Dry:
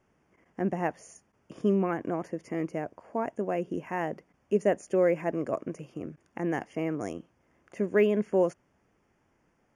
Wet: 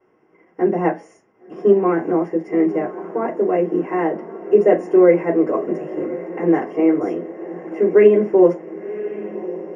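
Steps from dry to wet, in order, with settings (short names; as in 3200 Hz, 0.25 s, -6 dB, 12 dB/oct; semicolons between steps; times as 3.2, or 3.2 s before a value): diffused feedback echo 1.084 s, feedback 60%, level -14.5 dB; reverb RT60 0.30 s, pre-delay 3 ms, DRR -6.5 dB; gain -11.5 dB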